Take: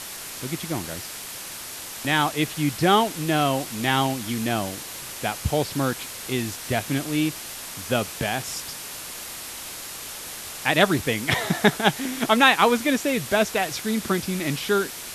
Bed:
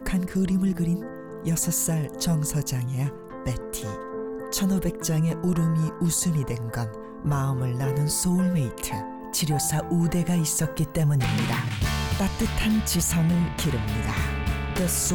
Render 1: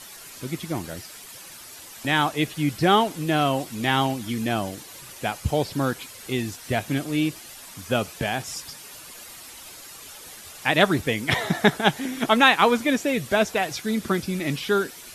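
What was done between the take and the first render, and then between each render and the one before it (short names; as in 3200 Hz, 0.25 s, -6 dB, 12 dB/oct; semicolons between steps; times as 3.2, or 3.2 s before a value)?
denoiser 10 dB, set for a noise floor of -37 dBFS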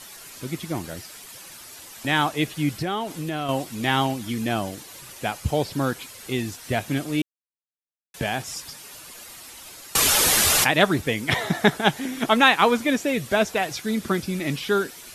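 2.82–3.49 compressor 3:1, threshold -26 dBFS; 7.22–8.14 mute; 9.95–10.71 fast leveller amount 100%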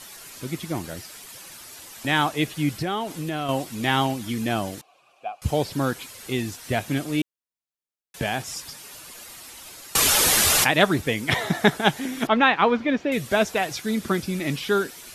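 4.81–5.42 vowel filter a; 12.27–13.12 air absorption 250 m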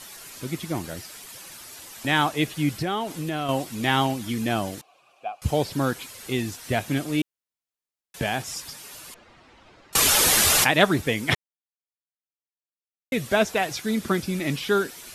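9.14–9.93 tape spacing loss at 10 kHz 37 dB; 11.35–13.12 mute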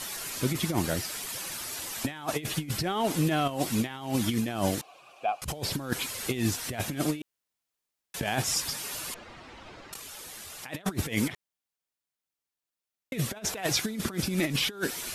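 negative-ratio compressor -29 dBFS, ratio -0.5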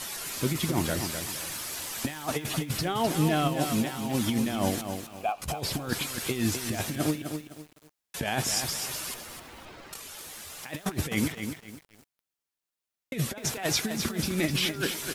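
doubler 13 ms -14 dB; lo-fi delay 0.255 s, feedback 35%, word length 8-bit, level -7 dB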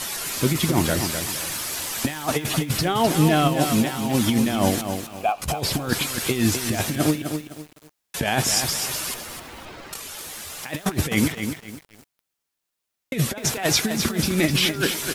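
gain +7 dB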